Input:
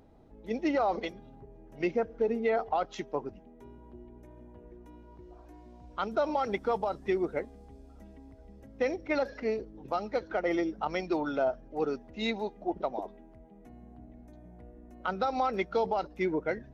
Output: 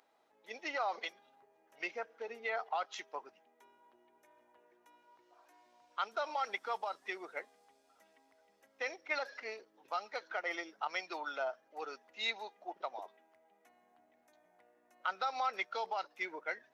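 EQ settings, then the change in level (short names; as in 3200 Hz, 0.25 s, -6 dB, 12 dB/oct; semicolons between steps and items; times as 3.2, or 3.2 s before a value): HPF 1100 Hz 12 dB/oct; 0.0 dB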